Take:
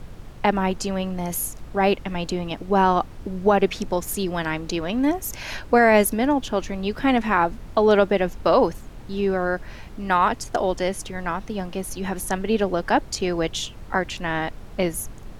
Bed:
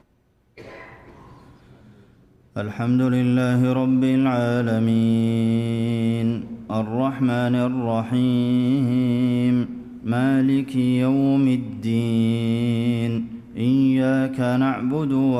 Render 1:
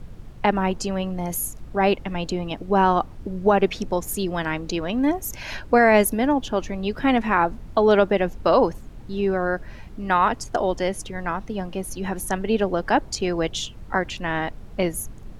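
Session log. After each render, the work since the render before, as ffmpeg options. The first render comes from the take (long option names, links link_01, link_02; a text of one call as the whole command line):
ffmpeg -i in.wav -af "afftdn=noise_reduction=6:noise_floor=-40" out.wav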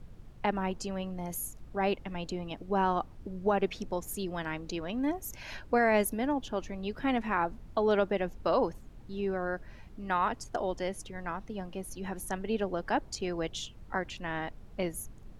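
ffmpeg -i in.wav -af "volume=-10dB" out.wav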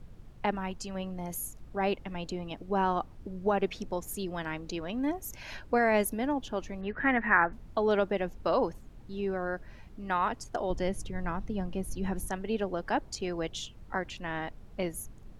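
ffmpeg -i in.wav -filter_complex "[0:a]asettb=1/sr,asplit=3[link_01][link_02][link_03];[link_01]atrim=end=0.554[link_04];[link_02]atrim=start=0.55:end=0.95,asetpts=PTS-STARTPTS,afade=type=in:duration=0.004:curve=qsin,afade=type=out:start_time=0.396:duration=0.004:curve=qsin,equalizer=frequency=420:width=0.63:gain=-6[link_05];[link_03]atrim=start=0.946[link_06];[link_04][link_05]acrossfade=duration=0.004:curve1=hsin:curve2=qsin[link_07];[link_07][link_06]acrossfade=duration=0.004:curve1=qsin:curve2=hsin,asettb=1/sr,asplit=3[link_08][link_09][link_10];[link_08]atrim=end=6.814[link_11];[link_09]atrim=start=6.81:end=7.53,asetpts=PTS-STARTPTS,afade=type=in:duration=0.004:curve=qsin,afade=type=out:start_time=0.716:duration=0.004:curve=qsin,lowpass=frequency=1800:width_type=q:width=5.3[link_12];[link_10]atrim=start=7.526[link_13];[link_11][link_12]acrossfade=duration=0.004:curve1=hsin:curve2=qsin[link_14];[link_14][link_13]acrossfade=duration=0.004:curve1=qsin:curve2=hsin,asettb=1/sr,asplit=3[link_15][link_16][link_17];[link_15]atrim=end=10.704[link_18];[link_16]atrim=start=10.7:end=12.28,asetpts=PTS-STARTPTS,afade=type=in:duration=0.004:curve=qsin,afade=type=out:start_time=1.576:duration=0.004:curve=qsin,lowshelf=frequency=250:gain=10[link_19];[link_17]atrim=start=12.276[link_20];[link_18][link_19]acrossfade=duration=0.004:curve1=hsin:curve2=qsin[link_21];[link_21][link_20]acrossfade=duration=0.004:curve1=qsin:curve2=hsin" out.wav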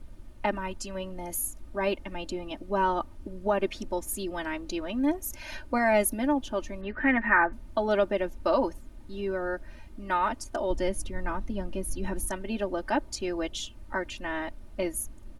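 ffmpeg -i in.wav -af "equalizer=frequency=10000:width_type=o:width=0.4:gain=7.5,aecho=1:1:3.3:0.83" out.wav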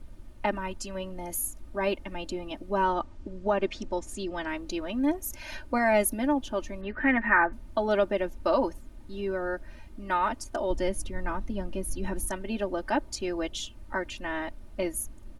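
ffmpeg -i in.wav -filter_complex "[0:a]asettb=1/sr,asplit=3[link_01][link_02][link_03];[link_01]atrim=end=2.934[link_04];[link_02]atrim=start=2.93:end=4.49,asetpts=PTS-STARTPTS,afade=type=in:duration=0.004:curve=qsin,afade=type=out:start_time=1.556:duration=0.004:curve=qsin,lowpass=frequency=7900:width=0.5412,lowpass=frequency=7900:width=1.3066[link_05];[link_03]atrim=start=4.486[link_06];[link_04][link_05]acrossfade=duration=0.004:curve1=hsin:curve2=qsin[link_07];[link_07][link_06]acrossfade=duration=0.004:curve1=qsin:curve2=hsin" out.wav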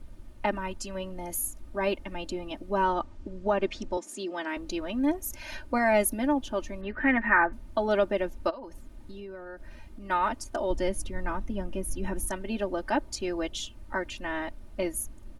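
ffmpeg -i in.wav -filter_complex "[0:a]asettb=1/sr,asplit=3[link_01][link_02][link_03];[link_01]atrim=end=3.974[link_04];[link_02]atrim=start=3.97:end=4.57,asetpts=PTS-STARTPTS,afade=type=in:duration=0.004:curve=qsin,afade=type=out:start_time=0.596:duration=0.004:curve=qsin,highpass=frequency=220:width=0.5412,highpass=frequency=220:width=1.3066[link_05];[link_03]atrim=start=4.566[link_06];[link_04][link_05]acrossfade=duration=0.004:curve1=hsin:curve2=qsin[link_07];[link_07][link_06]acrossfade=duration=0.004:curve1=qsin:curve2=hsin,asplit=3[link_08][link_09][link_10];[link_08]afade=type=out:start_time=8.49:duration=0.02[link_11];[link_09]acompressor=threshold=-37dB:ratio=16:attack=3.2:release=140:knee=1:detection=peak,afade=type=in:start_time=8.49:duration=0.02,afade=type=out:start_time=10.09:duration=0.02[link_12];[link_10]afade=type=in:start_time=10.09:duration=0.02[link_13];[link_11][link_12][link_13]amix=inputs=3:normalize=0,asettb=1/sr,asplit=3[link_14][link_15][link_16];[link_14]atrim=end=11.424[link_17];[link_15]atrim=start=11.42:end=12.23,asetpts=PTS-STARTPTS,afade=type=in:duration=0.004:curve=qsin,afade=type=out:start_time=0.806:duration=0.004:curve=qsin,equalizer=frequency=4300:width=7.7:gain=-12[link_18];[link_16]atrim=start=12.226[link_19];[link_17][link_18]acrossfade=duration=0.004:curve1=hsin:curve2=qsin[link_20];[link_20][link_19]acrossfade=duration=0.004:curve1=qsin:curve2=hsin" out.wav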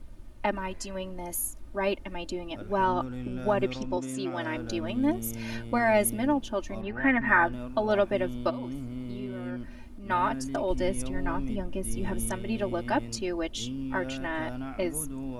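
ffmpeg -i in.wav -i bed.wav -filter_complex "[1:a]volume=-17.5dB[link_01];[0:a][link_01]amix=inputs=2:normalize=0" out.wav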